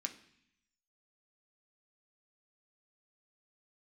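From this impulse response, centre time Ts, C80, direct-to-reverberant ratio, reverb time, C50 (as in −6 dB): 9 ms, 16.5 dB, 4.0 dB, 0.65 s, 13.0 dB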